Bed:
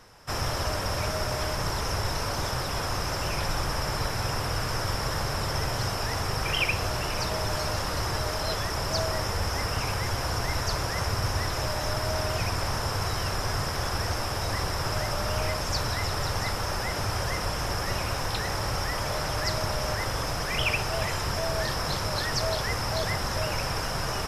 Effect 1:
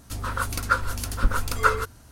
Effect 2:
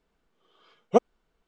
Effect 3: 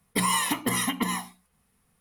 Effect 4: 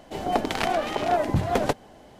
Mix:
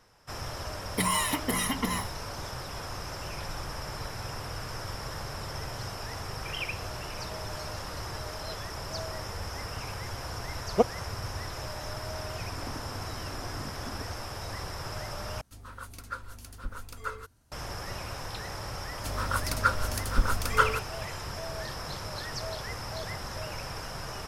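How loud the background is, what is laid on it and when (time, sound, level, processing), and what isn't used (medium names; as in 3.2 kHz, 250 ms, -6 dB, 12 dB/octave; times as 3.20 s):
bed -8.5 dB
0.82 s: add 3 -3 dB
9.84 s: add 2 -3 dB
12.31 s: add 4 -12 dB + band-pass filter 260 Hz, Q 2.9
15.41 s: replace with 1 -16 dB
18.94 s: add 1 -3 dB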